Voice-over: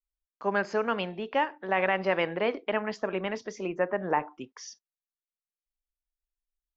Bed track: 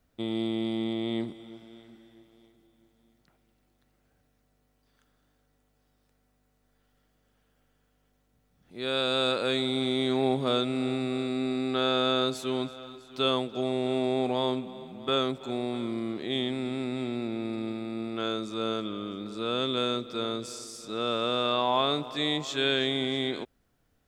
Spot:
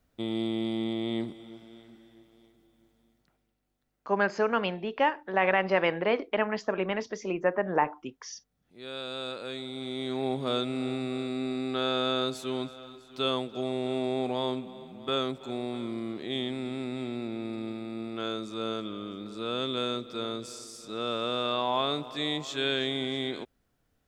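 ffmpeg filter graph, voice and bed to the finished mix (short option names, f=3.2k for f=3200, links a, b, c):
-filter_complex "[0:a]adelay=3650,volume=1.5dB[a];[1:a]volume=7dB,afade=t=out:st=2.89:d=0.71:silence=0.334965,afade=t=in:st=9.73:d=0.84:silence=0.421697[b];[a][b]amix=inputs=2:normalize=0"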